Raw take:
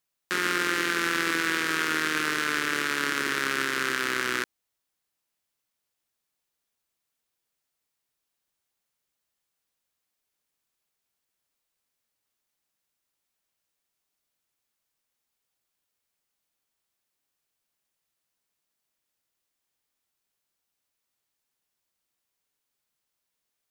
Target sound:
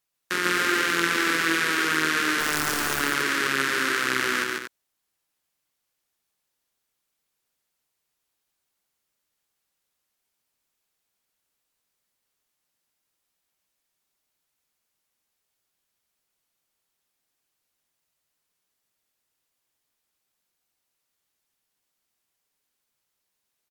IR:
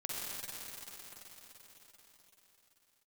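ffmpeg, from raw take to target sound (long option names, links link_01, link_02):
-filter_complex "[0:a]asettb=1/sr,asplit=3[link_01][link_02][link_03];[link_01]atrim=end=2.404[link_04];[link_02]atrim=start=2.4:end=3,asetpts=PTS-STARTPTS,afade=type=in:duration=0.004:curve=qsin,afade=type=out:start_time=0.596:duration=0.004:curve=qsin,aeval=exprs='(mod(7.08*val(0)+1,2)-1)/7.08':channel_layout=same[link_05];[link_03]atrim=start=2.996[link_06];[link_04][link_05]acrossfade=duration=0.004:curve1=hsin:curve2=qsin[link_07];[link_07][link_06]acrossfade=duration=0.004:curve1=qsin:curve2=hsin,aecho=1:1:139.9|233.2:0.708|0.355,volume=1.5dB" -ar 44100 -c:a libmp3lame -b:a 112k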